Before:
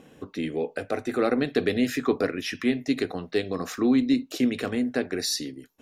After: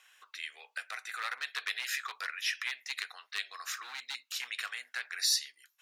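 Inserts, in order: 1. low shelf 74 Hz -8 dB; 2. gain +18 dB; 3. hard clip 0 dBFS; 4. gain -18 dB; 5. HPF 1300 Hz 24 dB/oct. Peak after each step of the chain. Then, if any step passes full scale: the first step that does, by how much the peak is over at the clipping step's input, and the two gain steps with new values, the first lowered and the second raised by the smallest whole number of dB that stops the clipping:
-10.0, +8.0, 0.0, -18.0, -16.5 dBFS; step 2, 8.0 dB; step 2 +10 dB, step 4 -10 dB

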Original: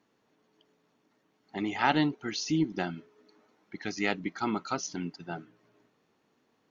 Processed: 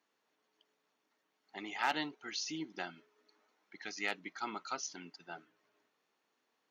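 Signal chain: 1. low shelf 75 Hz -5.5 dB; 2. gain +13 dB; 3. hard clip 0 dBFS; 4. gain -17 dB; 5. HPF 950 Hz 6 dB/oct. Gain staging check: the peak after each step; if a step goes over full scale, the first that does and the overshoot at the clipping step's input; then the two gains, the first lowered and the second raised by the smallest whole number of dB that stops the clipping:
-8.5, +4.5, 0.0, -17.0, -19.0 dBFS; step 2, 4.5 dB; step 2 +8 dB, step 4 -12 dB

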